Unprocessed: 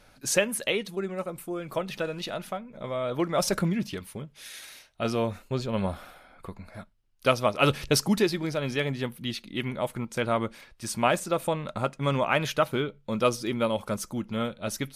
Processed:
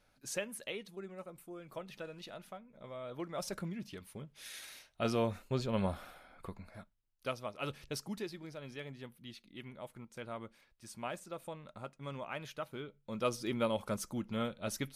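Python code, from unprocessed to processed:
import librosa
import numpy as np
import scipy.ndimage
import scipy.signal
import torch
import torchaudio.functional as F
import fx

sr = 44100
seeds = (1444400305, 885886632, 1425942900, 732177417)

y = fx.gain(x, sr, db=fx.line((3.78, -14.5), (4.49, -5.0), (6.47, -5.0), (7.45, -17.5), (12.7, -17.5), (13.51, -6.5)))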